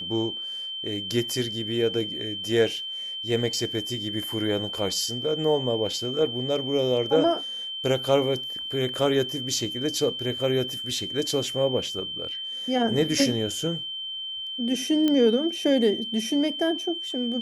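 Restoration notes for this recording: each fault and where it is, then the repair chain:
whine 3.1 kHz -31 dBFS
15.08 s: pop -12 dBFS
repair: de-click; band-stop 3.1 kHz, Q 30

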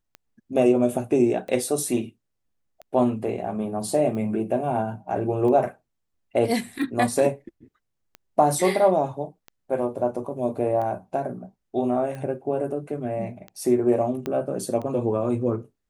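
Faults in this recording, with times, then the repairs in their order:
tick 45 rpm -24 dBFS
14.26 s: pop -15 dBFS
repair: de-click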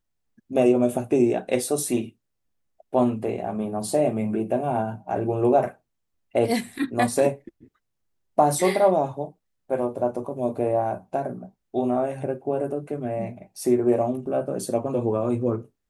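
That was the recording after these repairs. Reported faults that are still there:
14.26 s: pop

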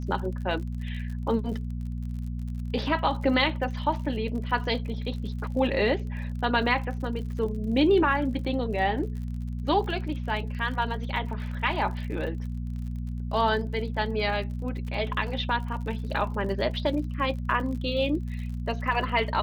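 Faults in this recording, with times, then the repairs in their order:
crackle 50 per s -37 dBFS
hum 60 Hz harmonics 4 -32 dBFS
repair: de-click; de-hum 60 Hz, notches 4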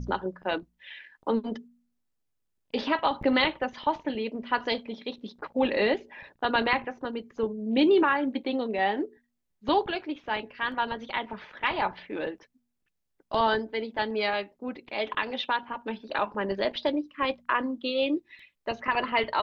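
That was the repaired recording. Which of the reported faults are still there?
nothing left

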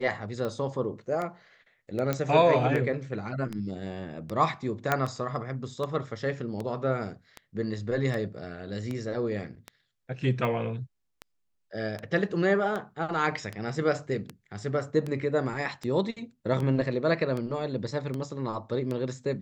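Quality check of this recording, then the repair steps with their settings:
tick 78 rpm -21 dBFS
2.13 s: pop -14 dBFS
4.92 s: pop -10 dBFS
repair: de-click

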